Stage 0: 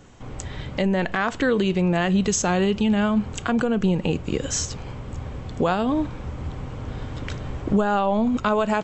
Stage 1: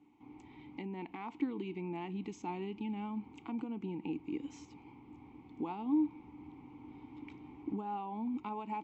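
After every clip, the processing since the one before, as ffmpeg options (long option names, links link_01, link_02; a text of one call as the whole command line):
ffmpeg -i in.wav -filter_complex "[0:a]asplit=3[link_01][link_02][link_03];[link_01]bandpass=frequency=300:width_type=q:width=8,volume=0dB[link_04];[link_02]bandpass=frequency=870:width_type=q:width=8,volume=-6dB[link_05];[link_03]bandpass=frequency=2240:width_type=q:width=8,volume=-9dB[link_06];[link_04][link_05][link_06]amix=inputs=3:normalize=0,volume=-4.5dB" out.wav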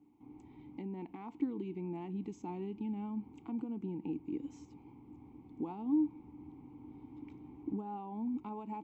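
ffmpeg -i in.wav -af "equalizer=frequency=2600:width=0.35:gain=-12,volume=1.5dB" out.wav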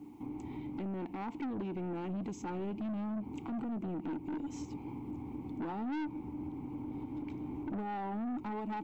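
ffmpeg -i in.wav -af "aeval=exprs='(tanh(126*val(0)+0.15)-tanh(0.15))/126':channel_layout=same,alimiter=level_in=25dB:limit=-24dB:level=0:latency=1:release=261,volume=-25dB,volume=15.5dB" out.wav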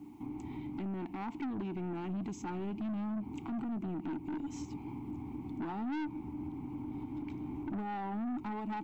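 ffmpeg -i in.wav -af "equalizer=frequency=510:width_type=o:width=0.4:gain=-12.5,volume=1dB" out.wav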